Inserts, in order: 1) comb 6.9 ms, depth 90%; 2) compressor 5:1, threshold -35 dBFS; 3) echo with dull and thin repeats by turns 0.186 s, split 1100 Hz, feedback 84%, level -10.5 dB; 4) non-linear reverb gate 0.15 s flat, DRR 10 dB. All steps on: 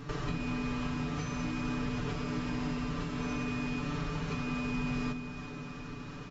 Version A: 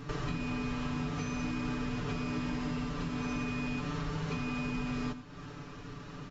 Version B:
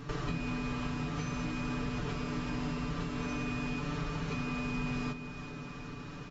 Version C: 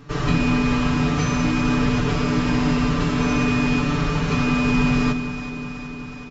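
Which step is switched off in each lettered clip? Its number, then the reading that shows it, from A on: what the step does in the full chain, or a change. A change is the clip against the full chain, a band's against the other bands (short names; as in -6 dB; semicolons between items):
3, echo-to-direct -6.0 dB to -10.0 dB; 4, echo-to-direct -6.0 dB to -8.5 dB; 2, mean gain reduction 12.0 dB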